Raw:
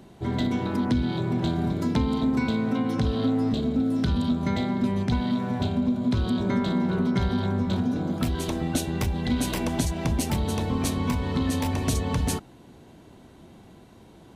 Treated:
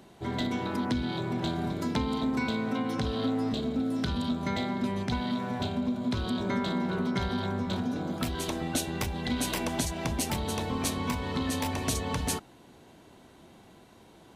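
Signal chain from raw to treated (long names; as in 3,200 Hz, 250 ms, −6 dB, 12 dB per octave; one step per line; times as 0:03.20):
low-shelf EQ 350 Hz −8.5 dB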